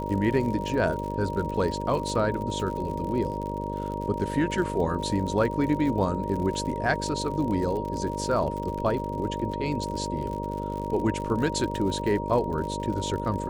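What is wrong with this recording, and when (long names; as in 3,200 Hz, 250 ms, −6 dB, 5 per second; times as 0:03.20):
mains buzz 50 Hz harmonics 12 −33 dBFS
surface crackle 63 per second −33 dBFS
whistle 940 Hz −33 dBFS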